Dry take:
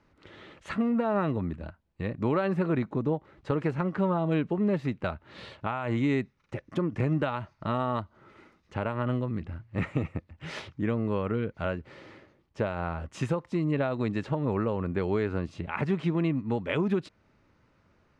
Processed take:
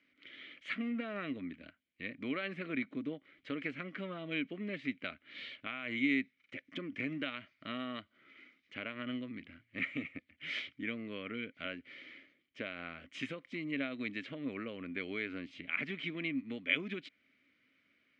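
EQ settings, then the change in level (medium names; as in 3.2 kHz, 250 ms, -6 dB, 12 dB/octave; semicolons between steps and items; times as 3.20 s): vowel filter i; resonant low shelf 480 Hz -13.5 dB, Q 1.5; +13.5 dB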